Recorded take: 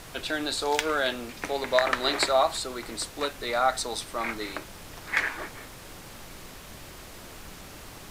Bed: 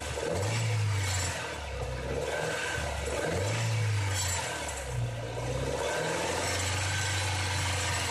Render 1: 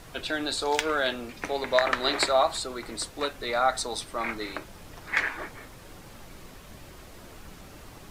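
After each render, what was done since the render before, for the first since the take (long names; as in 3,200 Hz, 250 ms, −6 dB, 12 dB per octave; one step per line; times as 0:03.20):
broadband denoise 6 dB, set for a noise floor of −45 dBFS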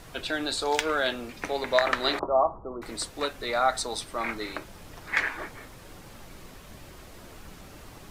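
0:02.19–0:02.82: Butterworth low-pass 1,200 Hz 72 dB per octave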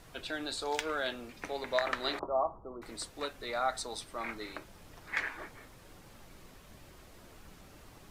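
level −8 dB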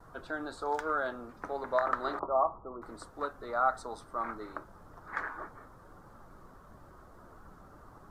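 high shelf with overshoot 1,800 Hz −11.5 dB, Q 3
noise gate with hold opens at −48 dBFS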